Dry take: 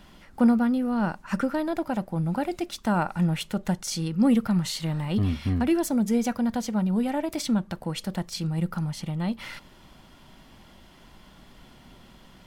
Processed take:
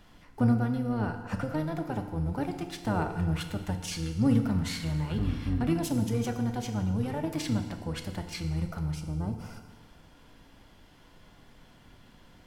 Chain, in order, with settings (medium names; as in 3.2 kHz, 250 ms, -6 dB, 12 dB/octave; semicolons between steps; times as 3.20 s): time-frequency box 8.95–9.69 s, 1.6–4.6 kHz -16 dB; harmony voices -12 st -3 dB; FDN reverb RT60 1.4 s, low-frequency decay 0.95×, high-frequency decay 0.9×, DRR 5.5 dB; trim -7 dB